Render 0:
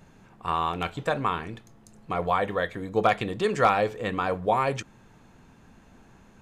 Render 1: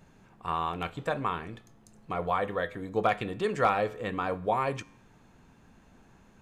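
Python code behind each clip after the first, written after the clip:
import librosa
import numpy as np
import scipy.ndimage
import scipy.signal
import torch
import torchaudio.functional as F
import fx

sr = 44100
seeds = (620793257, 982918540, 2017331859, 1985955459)

y = fx.dynamic_eq(x, sr, hz=5700.0, q=0.92, threshold_db=-49.0, ratio=4.0, max_db=-4)
y = fx.comb_fb(y, sr, f0_hz=56.0, decay_s=0.69, harmonics='odd', damping=0.0, mix_pct=40)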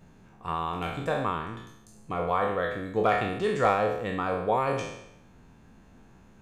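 y = fx.spec_trails(x, sr, decay_s=0.81)
y = fx.low_shelf(y, sr, hz=470.0, db=4.0)
y = F.gain(torch.from_numpy(y), -2.0).numpy()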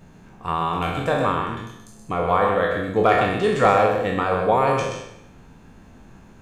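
y = x + 10.0 ** (-5.5 / 20.0) * np.pad(x, (int(127 * sr / 1000.0), 0))[:len(x)]
y = F.gain(torch.from_numpy(y), 6.5).numpy()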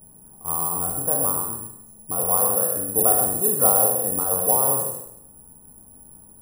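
y = (np.kron(scipy.signal.resample_poly(x, 1, 4), np.eye(4)[0]) * 4)[:len(x)]
y = scipy.signal.sosfilt(scipy.signal.cheby1(2, 1.0, [950.0, 7400.0], 'bandstop', fs=sr, output='sos'), y)
y = F.gain(torch.from_numpy(y), -6.5).numpy()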